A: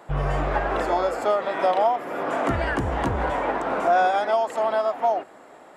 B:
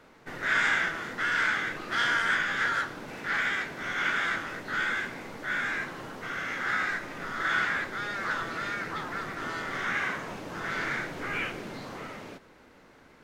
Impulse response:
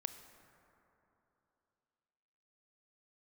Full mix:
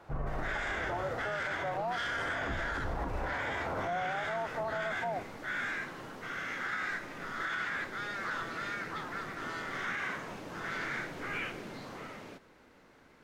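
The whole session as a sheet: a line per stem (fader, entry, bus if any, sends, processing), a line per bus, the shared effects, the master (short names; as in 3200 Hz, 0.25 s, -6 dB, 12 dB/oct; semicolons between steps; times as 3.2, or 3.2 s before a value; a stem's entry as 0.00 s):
-9.0 dB, 0.00 s, no send, octaver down 2 oct, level +2 dB; Chebyshev low-pass 1500 Hz, order 2
-4.5 dB, 0.00 s, no send, dry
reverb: off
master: limiter -26.5 dBFS, peak gain reduction 10 dB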